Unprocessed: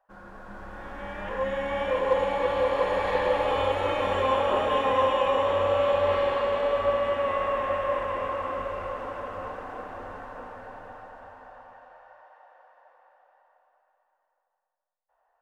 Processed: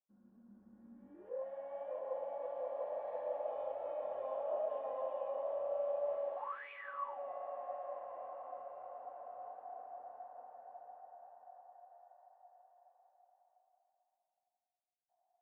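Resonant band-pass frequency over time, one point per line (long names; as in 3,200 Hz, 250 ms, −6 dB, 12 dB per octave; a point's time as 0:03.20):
resonant band-pass, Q 17
0:01.02 230 Hz
0:01.44 650 Hz
0:06.35 650 Hz
0:06.71 2,500 Hz
0:07.19 710 Hz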